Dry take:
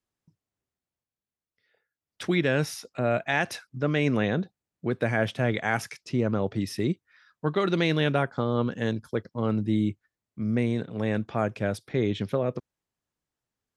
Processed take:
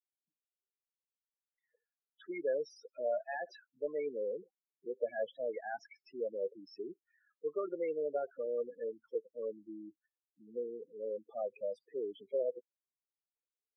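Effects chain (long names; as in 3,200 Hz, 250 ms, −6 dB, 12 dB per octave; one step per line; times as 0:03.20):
spectral peaks only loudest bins 8
four-pole ladder high-pass 430 Hz, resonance 60%
level −2.5 dB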